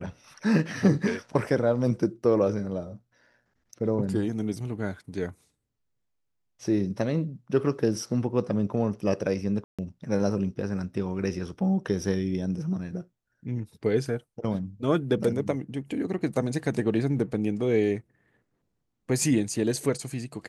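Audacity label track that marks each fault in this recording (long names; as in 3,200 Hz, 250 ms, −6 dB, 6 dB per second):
9.640000	9.790000	drop-out 146 ms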